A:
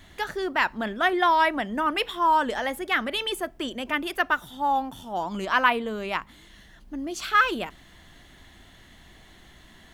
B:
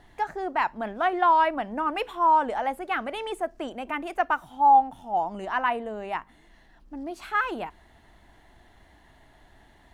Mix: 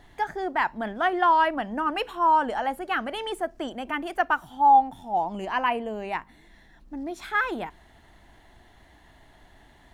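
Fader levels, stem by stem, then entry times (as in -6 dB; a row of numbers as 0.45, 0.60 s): -14.0, +1.0 dB; 0.00, 0.00 s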